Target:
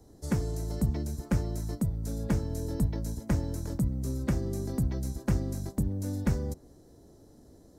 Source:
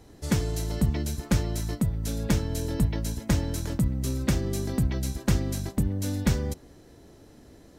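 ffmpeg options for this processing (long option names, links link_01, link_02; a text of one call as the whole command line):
ffmpeg -i in.wav -filter_complex "[0:a]acrossover=split=180|880|3800[link_01][link_02][link_03][link_04];[link_03]adynamicsmooth=sensitivity=3:basefreq=1300[link_05];[link_04]alimiter=level_in=8dB:limit=-24dB:level=0:latency=1:release=146,volume=-8dB[link_06];[link_01][link_02][link_05][link_06]amix=inputs=4:normalize=0,volume=-3.5dB" out.wav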